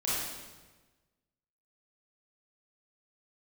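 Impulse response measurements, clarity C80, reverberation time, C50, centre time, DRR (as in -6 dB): 0.5 dB, 1.3 s, -3.5 dB, 100 ms, -9.0 dB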